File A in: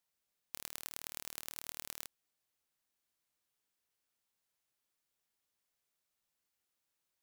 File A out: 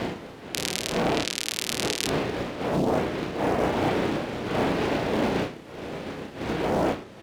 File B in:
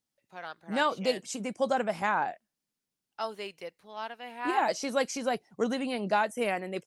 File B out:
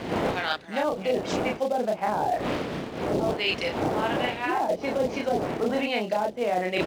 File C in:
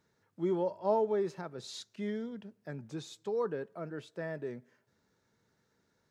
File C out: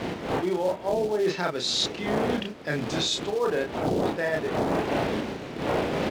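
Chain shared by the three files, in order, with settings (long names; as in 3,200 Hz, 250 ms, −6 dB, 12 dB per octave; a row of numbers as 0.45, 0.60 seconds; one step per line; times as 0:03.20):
wind on the microphone 420 Hz −36 dBFS
dynamic equaliser 740 Hz, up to +7 dB, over −43 dBFS, Q 1.2
treble cut that deepens with the level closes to 460 Hz, closed at −19.5 dBFS
double-tracking delay 33 ms −4 dB
in parallel at −9 dB: floating-point word with a short mantissa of 2 bits
on the sum: meter weighting curve D
reversed playback
downward compressor 16 to 1, threshold −34 dBFS
reversed playback
loudness normalisation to −27 LKFS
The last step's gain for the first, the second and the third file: +13.5, +11.5, +12.0 decibels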